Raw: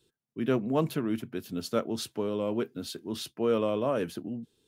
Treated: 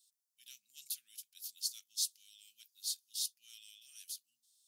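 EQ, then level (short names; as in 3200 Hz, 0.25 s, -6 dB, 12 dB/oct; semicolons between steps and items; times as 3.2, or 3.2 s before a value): inverse Chebyshev high-pass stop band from 1100 Hz, stop band 70 dB; +6.5 dB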